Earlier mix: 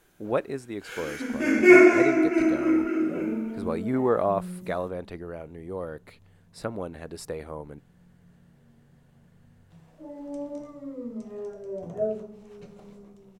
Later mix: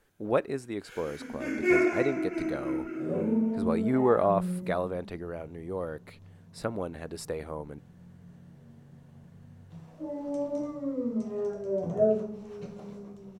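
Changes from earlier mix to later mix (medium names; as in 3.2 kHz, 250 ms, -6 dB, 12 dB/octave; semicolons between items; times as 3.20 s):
first sound -10.0 dB; second sound: send +6.0 dB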